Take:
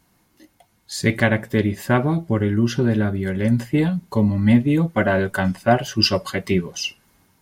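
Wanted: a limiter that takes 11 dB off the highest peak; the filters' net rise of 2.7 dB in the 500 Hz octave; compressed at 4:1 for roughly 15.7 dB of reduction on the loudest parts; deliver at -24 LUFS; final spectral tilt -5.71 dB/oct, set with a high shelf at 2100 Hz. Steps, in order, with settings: bell 500 Hz +4 dB; high shelf 2100 Hz -7.5 dB; compressor 4:1, threshold -29 dBFS; gain +12 dB; limiter -14.5 dBFS

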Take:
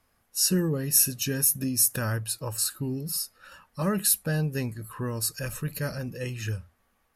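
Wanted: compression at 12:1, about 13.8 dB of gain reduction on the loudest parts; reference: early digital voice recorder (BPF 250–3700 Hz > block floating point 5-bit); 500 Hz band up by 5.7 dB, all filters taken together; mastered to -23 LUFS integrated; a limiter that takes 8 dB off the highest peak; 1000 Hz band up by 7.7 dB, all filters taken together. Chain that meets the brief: bell 500 Hz +5.5 dB; bell 1000 Hz +8.5 dB; compressor 12:1, threshold -31 dBFS; limiter -28 dBFS; BPF 250–3700 Hz; block floating point 5-bit; gain +18.5 dB

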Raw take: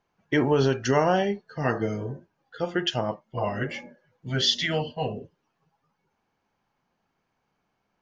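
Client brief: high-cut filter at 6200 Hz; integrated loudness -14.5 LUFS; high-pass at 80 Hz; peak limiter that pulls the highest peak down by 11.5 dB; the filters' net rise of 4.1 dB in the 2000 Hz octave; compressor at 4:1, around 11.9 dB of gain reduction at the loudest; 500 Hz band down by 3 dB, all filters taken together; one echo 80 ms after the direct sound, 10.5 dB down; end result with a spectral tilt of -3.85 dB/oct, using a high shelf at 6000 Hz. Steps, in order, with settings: HPF 80 Hz; LPF 6200 Hz; bell 500 Hz -4 dB; bell 2000 Hz +6 dB; high shelf 6000 Hz -9 dB; compressor 4:1, threshold -33 dBFS; limiter -30.5 dBFS; echo 80 ms -10.5 dB; gain +26.5 dB

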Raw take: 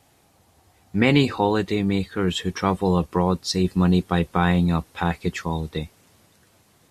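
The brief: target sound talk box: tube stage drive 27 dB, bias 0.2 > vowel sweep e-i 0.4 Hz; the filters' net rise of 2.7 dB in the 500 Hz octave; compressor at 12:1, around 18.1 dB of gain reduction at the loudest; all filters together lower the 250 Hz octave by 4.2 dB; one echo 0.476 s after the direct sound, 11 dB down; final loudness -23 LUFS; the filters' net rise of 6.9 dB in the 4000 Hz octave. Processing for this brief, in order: bell 250 Hz -8.5 dB; bell 500 Hz +6 dB; bell 4000 Hz +8.5 dB; compressor 12:1, threshold -32 dBFS; echo 0.476 s -11 dB; tube stage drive 27 dB, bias 0.2; vowel sweep e-i 0.4 Hz; gain +26.5 dB

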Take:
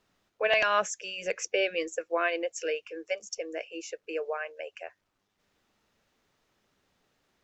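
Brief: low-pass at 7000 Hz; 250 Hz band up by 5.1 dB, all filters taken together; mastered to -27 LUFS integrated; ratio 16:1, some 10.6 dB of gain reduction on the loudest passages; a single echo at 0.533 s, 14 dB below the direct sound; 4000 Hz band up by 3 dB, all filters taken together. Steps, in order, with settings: LPF 7000 Hz; bell 250 Hz +8.5 dB; bell 4000 Hz +5.5 dB; compressor 16:1, threshold -29 dBFS; echo 0.533 s -14 dB; gain +8.5 dB

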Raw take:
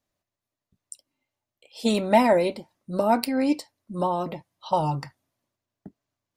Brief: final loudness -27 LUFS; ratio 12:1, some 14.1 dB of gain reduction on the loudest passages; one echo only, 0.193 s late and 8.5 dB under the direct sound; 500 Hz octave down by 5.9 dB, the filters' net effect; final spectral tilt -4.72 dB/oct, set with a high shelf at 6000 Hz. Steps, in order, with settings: bell 500 Hz -8 dB; high shelf 6000 Hz +8 dB; compressor 12:1, threshold -30 dBFS; echo 0.193 s -8.5 dB; gain +9 dB

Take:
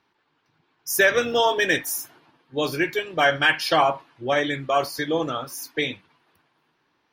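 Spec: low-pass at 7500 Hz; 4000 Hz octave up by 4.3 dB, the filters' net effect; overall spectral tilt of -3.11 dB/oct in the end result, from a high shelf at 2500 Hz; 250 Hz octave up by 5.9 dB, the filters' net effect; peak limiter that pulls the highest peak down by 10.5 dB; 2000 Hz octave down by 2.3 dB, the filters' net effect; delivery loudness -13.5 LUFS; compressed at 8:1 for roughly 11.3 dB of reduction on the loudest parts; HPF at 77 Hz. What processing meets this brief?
HPF 77 Hz; LPF 7500 Hz; bell 250 Hz +8 dB; bell 2000 Hz -6 dB; high shelf 2500 Hz +5 dB; bell 4000 Hz +4 dB; compressor 8:1, threshold -25 dBFS; gain +21 dB; limiter -4.5 dBFS

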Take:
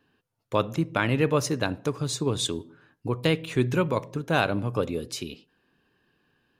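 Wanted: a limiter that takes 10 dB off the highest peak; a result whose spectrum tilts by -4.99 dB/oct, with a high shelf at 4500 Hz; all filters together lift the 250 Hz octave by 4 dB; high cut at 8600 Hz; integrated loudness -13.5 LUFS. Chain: LPF 8600 Hz; bell 250 Hz +5.5 dB; high shelf 4500 Hz +4.5 dB; gain +15.5 dB; limiter -1.5 dBFS

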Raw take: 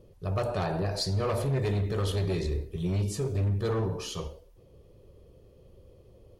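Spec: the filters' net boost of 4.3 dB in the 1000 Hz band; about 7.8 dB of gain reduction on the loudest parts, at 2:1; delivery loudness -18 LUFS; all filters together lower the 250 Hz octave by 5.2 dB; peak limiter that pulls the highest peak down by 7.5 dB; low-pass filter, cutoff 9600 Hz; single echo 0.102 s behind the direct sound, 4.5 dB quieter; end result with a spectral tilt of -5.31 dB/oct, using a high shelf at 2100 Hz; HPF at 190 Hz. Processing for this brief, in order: HPF 190 Hz; LPF 9600 Hz; bell 250 Hz -5.5 dB; bell 1000 Hz +8 dB; high shelf 2100 Hz -8 dB; compressor 2:1, threshold -39 dBFS; limiter -32.5 dBFS; echo 0.102 s -4.5 dB; gain +22.5 dB

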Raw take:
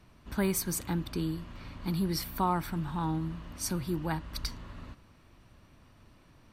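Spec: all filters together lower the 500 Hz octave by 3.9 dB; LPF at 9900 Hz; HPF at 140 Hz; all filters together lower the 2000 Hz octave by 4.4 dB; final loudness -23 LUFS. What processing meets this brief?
HPF 140 Hz; LPF 9900 Hz; bell 500 Hz -6 dB; bell 2000 Hz -5.5 dB; gain +12.5 dB

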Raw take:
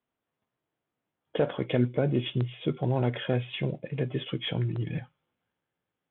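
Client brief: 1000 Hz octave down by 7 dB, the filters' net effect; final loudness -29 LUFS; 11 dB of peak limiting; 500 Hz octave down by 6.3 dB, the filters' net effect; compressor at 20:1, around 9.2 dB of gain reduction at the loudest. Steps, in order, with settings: bell 500 Hz -6.5 dB; bell 1000 Hz -7 dB; compressor 20:1, threshold -29 dBFS; gain +11 dB; limiter -19.5 dBFS

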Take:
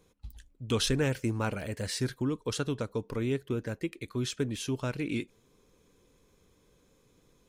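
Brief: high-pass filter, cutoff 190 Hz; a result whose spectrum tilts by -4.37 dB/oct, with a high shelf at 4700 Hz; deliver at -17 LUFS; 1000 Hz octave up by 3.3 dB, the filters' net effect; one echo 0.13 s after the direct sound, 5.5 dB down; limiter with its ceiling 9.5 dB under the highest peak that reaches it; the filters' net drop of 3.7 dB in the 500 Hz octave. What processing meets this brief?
HPF 190 Hz; bell 500 Hz -5.5 dB; bell 1000 Hz +6 dB; high shelf 4700 Hz -5 dB; limiter -23.5 dBFS; echo 0.13 s -5.5 dB; gain +19 dB

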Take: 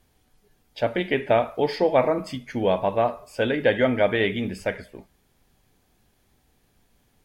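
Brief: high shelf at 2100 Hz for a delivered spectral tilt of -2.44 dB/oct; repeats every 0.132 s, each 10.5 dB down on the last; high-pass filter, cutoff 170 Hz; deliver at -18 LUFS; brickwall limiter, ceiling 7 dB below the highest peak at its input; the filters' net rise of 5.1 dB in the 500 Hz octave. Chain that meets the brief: HPF 170 Hz; bell 500 Hz +5.5 dB; high shelf 2100 Hz +8.5 dB; limiter -9.5 dBFS; feedback echo 0.132 s, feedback 30%, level -10.5 dB; gain +4 dB

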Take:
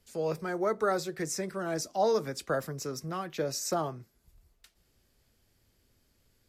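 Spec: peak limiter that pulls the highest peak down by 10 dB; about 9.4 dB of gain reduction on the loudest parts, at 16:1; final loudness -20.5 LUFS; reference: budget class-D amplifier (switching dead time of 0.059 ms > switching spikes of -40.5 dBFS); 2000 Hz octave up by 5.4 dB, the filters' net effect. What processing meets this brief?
bell 2000 Hz +7.5 dB; compressor 16:1, threshold -31 dBFS; limiter -32 dBFS; switching dead time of 0.059 ms; switching spikes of -40.5 dBFS; gain +22 dB

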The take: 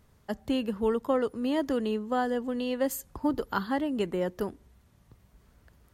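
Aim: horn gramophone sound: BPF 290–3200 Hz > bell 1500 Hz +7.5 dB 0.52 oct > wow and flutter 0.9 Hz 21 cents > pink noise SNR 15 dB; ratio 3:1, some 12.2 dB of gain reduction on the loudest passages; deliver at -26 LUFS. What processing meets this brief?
compressor 3:1, threshold -39 dBFS; BPF 290–3200 Hz; bell 1500 Hz +7.5 dB 0.52 oct; wow and flutter 0.9 Hz 21 cents; pink noise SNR 15 dB; gain +15.5 dB

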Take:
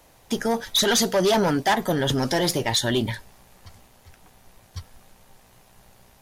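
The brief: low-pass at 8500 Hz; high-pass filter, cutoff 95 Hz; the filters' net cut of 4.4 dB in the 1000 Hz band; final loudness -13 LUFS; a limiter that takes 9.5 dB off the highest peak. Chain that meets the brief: HPF 95 Hz; LPF 8500 Hz; bell 1000 Hz -6 dB; gain +16.5 dB; limiter -5 dBFS

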